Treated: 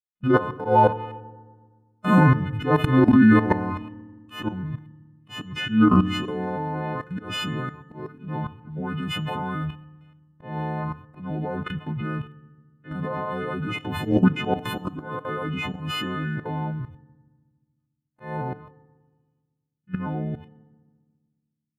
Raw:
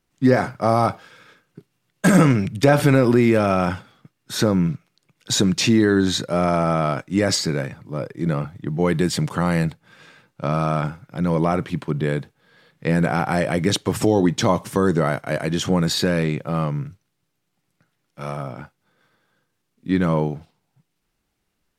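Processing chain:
every partial snapped to a pitch grid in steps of 3 semitones
noise gate −39 dBFS, range −36 dB
parametric band 6,300 Hz −10.5 dB 1.5 octaves
output level in coarse steps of 17 dB
volume swells 169 ms
formants moved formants −5 semitones
feedback delay network reverb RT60 1.4 s, low-frequency decay 1.5×, high-frequency decay 0.6×, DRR 17 dB
boost into a limiter +11.5 dB
level −6 dB

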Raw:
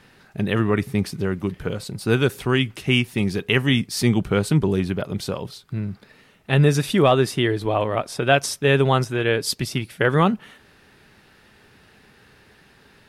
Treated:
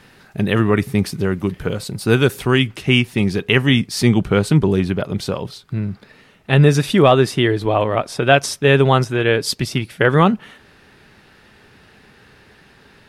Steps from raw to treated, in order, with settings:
high-shelf EQ 8,900 Hz +2 dB, from 0:02.67 −6.5 dB
level +4.5 dB

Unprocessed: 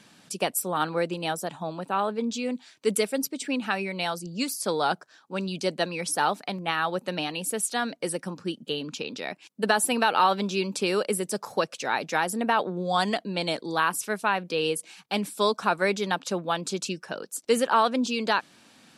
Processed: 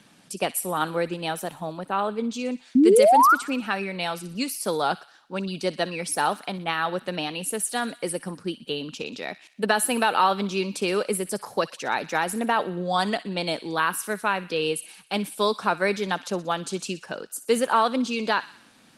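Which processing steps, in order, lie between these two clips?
tape wow and flutter 16 cents
0:02.75–0:03.35: sound drawn into the spectrogram rise 240–1,500 Hz −16 dBFS
0:13.59–0:14.71: dynamic equaliser 780 Hz, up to −4 dB, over −43 dBFS, Q 7
on a send: delay with a high-pass on its return 61 ms, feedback 58%, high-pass 1,700 Hz, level −13.5 dB
on the sum: level +1 dB
Opus 32 kbit/s 48,000 Hz

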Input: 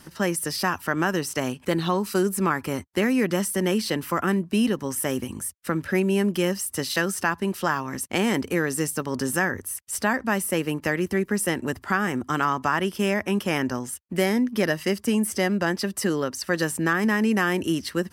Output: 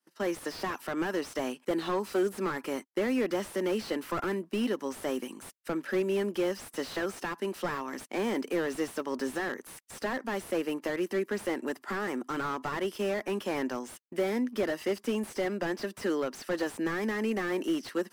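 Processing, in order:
high-pass filter 260 Hz 24 dB per octave
downward expander −36 dBFS
slew-rate limiting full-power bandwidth 55 Hz
level −3.5 dB

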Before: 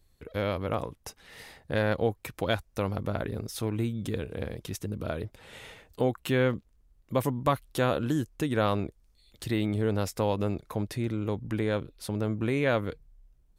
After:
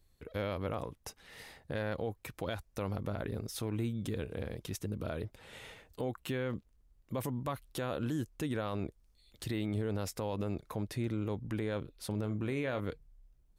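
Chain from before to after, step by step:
0:12.07–0:12.80: double-tracking delay 38 ms −13 dB
brickwall limiter −23 dBFS, peak gain reduction 9 dB
level −3.5 dB

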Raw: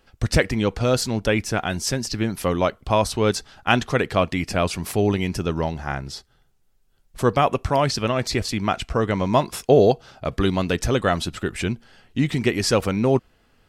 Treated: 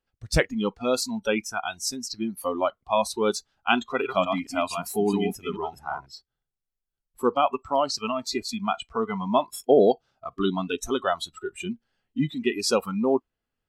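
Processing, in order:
0:03.81–0:06.06: delay that plays each chunk backwards 220 ms, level −3.5 dB
noise reduction from a noise print of the clip's start 22 dB
level −2.5 dB

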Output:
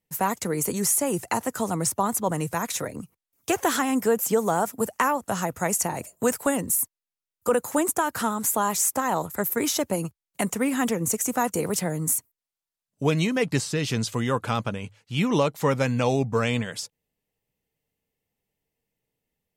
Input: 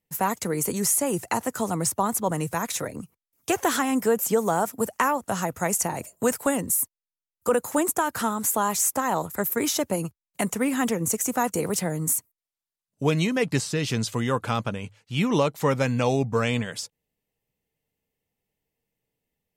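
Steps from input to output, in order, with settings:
pitch vibrato 13 Hz 18 cents

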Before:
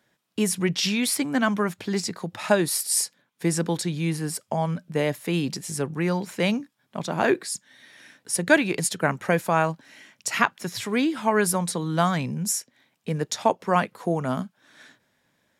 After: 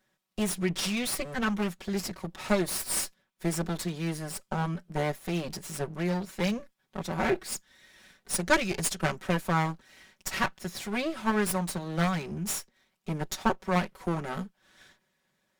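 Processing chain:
lower of the sound and its delayed copy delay 5.3 ms
0:07.51–0:09.17: dynamic equaliser 6,200 Hz, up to +5 dB, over −40 dBFS, Q 0.85
level −4.5 dB

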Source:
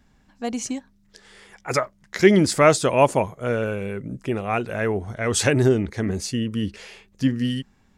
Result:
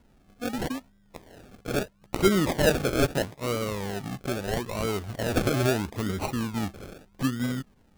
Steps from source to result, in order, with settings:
parametric band 5,700 Hz +12 dB 0.31 octaves
in parallel at +3 dB: downward compressor, threshold −30 dBFS, peak gain reduction 20 dB
on the sum: sample-and-hold swept by an LFO 36×, swing 60% 0.77 Hz
level −8.5 dB

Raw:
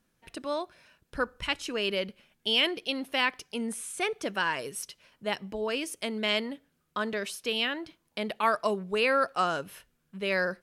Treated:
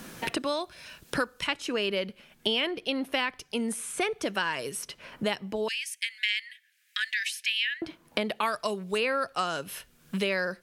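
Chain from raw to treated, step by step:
0:05.68–0:07.82: Chebyshev high-pass filter 1,700 Hz, order 6
multiband upward and downward compressor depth 100%

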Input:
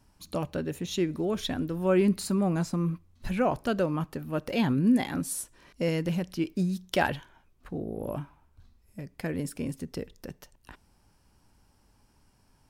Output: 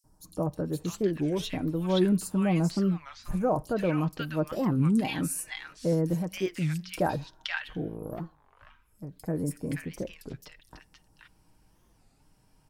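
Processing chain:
0:06.10–0:06.84: tilt shelving filter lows −4 dB, about 660 Hz
0:07.85–0:09.08: tube saturation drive 27 dB, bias 0.7
comb filter 6.4 ms, depth 42%
three-band delay without the direct sound highs, lows, mids 40/520 ms, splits 1,300/5,300 Hz
wow of a warped record 33 1/3 rpm, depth 250 cents

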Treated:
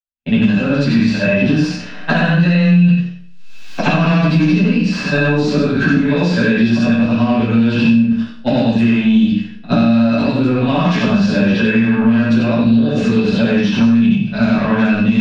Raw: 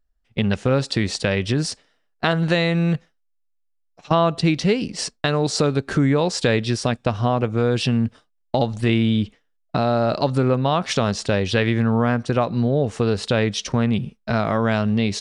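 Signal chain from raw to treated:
every overlapping window played backwards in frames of 187 ms
source passing by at 0:03.98, 7 m/s, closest 2.7 metres
camcorder AGC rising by 38 dB per second
noise gate −57 dBFS, range −51 dB
high-shelf EQ 2,100 Hz +10 dB
transient designer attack −3 dB, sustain +5 dB
sine wavefolder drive 12 dB, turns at −7.5 dBFS
high-frequency loss of the air 220 metres
hollow resonant body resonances 220/1,600/2,600 Hz, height 14 dB, ringing for 45 ms
convolution reverb RT60 0.45 s, pre-delay 7 ms, DRR −9 dB
multiband upward and downward compressor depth 100%
level −17.5 dB

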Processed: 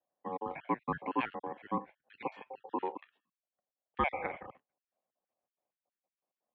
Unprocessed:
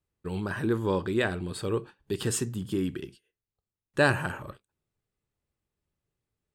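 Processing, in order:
time-frequency cells dropped at random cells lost 53%
ring modulation 760 Hz
single-sideband voice off tune −110 Hz 230–2,900 Hz
level −2 dB

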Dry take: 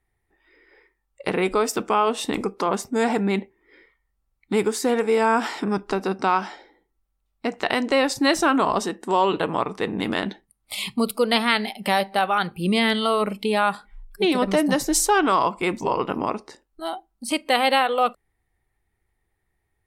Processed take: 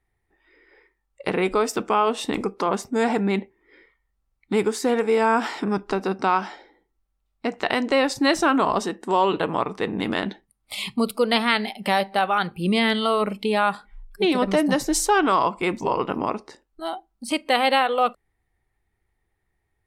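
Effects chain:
high-shelf EQ 8,100 Hz −6.5 dB

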